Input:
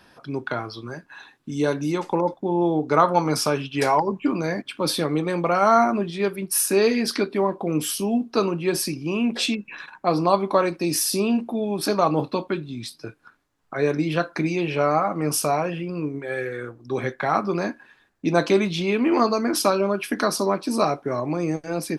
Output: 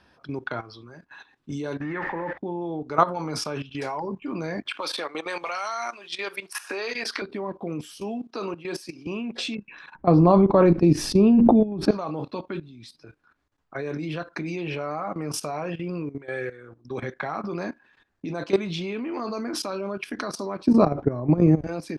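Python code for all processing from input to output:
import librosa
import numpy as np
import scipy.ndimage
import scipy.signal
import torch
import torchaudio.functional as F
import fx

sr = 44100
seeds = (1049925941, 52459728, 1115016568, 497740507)

y = fx.chain(x, sr, fx.zero_step(step_db=-31.0),
    fx.lowpass_res(hz=1800.0, q=11.0), at=(1.81, 2.38))
y = fx.chain(y, sr, fx.highpass(hz=760.0, slope=12),
    fx.band_squash(depth_pct=100), at=(4.66, 7.22))
y = fx.chain(y, sr, fx.highpass(hz=150.0, slope=24),
    fx.low_shelf(hz=260.0, db=-9.5), at=(8.0, 9.07))
y = fx.chain(y, sr, fx.tilt_eq(slope=-4.5),
    fx.sustainer(db_per_s=22.0), at=(9.95, 11.91))
y = fx.chain(y, sr, fx.highpass(hz=62.0, slope=6),
    fx.tilt_eq(slope=-4.5),
    fx.env_flatten(amount_pct=50), at=(20.67, 21.67))
y = scipy.signal.sosfilt(scipy.signal.bessel(2, 6000.0, 'lowpass', norm='mag', fs=sr, output='sos'), y)
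y = fx.peak_eq(y, sr, hz=70.0, db=9.5, octaves=0.43)
y = fx.level_steps(y, sr, step_db=15)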